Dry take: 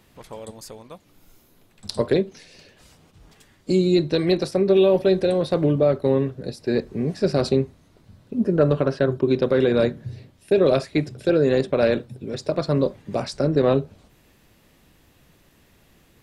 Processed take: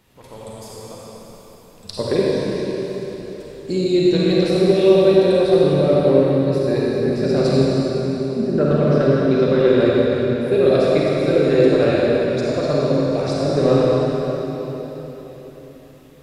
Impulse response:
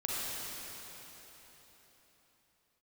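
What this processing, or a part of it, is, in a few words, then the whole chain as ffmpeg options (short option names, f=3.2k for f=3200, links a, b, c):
cathedral: -filter_complex "[1:a]atrim=start_sample=2205[a];[0:a][a]afir=irnorm=-1:irlink=0,volume=-1.5dB"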